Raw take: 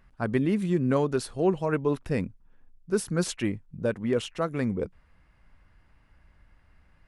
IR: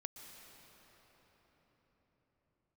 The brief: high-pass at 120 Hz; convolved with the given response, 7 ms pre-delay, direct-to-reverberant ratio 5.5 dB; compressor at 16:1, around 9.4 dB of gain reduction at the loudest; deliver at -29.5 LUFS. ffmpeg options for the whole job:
-filter_complex "[0:a]highpass=120,acompressor=threshold=0.0355:ratio=16,asplit=2[s0][s1];[1:a]atrim=start_sample=2205,adelay=7[s2];[s1][s2]afir=irnorm=-1:irlink=0,volume=0.794[s3];[s0][s3]amix=inputs=2:normalize=0,volume=1.78"

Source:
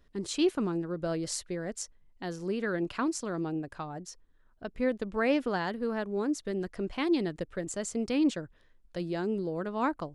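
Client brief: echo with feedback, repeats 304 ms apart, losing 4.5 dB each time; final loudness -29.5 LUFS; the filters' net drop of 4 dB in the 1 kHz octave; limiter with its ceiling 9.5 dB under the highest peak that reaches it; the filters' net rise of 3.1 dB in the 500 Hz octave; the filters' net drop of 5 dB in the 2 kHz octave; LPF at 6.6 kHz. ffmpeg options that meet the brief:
-af "lowpass=6600,equalizer=f=500:t=o:g=5.5,equalizer=f=1000:t=o:g=-6.5,equalizer=f=2000:t=o:g=-4.5,alimiter=limit=0.0631:level=0:latency=1,aecho=1:1:304|608|912|1216|1520|1824|2128|2432|2736:0.596|0.357|0.214|0.129|0.0772|0.0463|0.0278|0.0167|0.01,volume=1.33"

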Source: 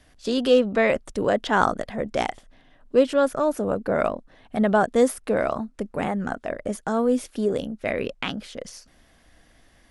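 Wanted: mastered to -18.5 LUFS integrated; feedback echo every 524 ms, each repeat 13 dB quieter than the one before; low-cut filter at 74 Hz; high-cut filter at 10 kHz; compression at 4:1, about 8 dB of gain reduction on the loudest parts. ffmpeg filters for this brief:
-af "highpass=74,lowpass=10000,acompressor=threshold=0.0794:ratio=4,aecho=1:1:524|1048|1572:0.224|0.0493|0.0108,volume=3.16"

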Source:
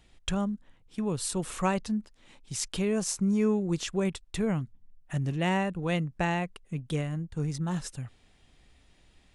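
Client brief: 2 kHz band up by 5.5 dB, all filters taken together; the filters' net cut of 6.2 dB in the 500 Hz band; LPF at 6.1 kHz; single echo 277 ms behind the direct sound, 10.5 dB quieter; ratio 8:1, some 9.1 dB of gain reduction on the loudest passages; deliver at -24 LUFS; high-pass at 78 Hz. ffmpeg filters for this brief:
-af "highpass=78,lowpass=6100,equalizer=f=500:t=o:g=-8.5,equalizer=f=2000:t=o:g=7,acompressor=threshold=0.0224:ratio=8,aecho=1:1:277:0.299,volume=4.73"

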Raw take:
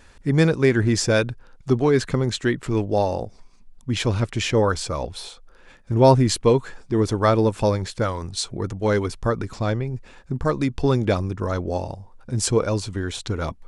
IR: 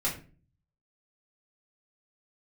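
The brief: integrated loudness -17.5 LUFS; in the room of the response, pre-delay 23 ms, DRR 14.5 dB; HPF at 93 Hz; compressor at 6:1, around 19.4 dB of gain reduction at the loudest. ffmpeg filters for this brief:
-filter_complex "[0:a]highpass=93,acompressor=threshold=0.0282:ratio=6,asplit=2[s0][s1];[1:a]atrim=start_sample=2205,adelay=23[s2];[s1][s2]afir=irnorm=-1:irlink=0,volume=0.0891[s3];[s0][s3]amix=inputs=2:normalize=0,volume=7.94"

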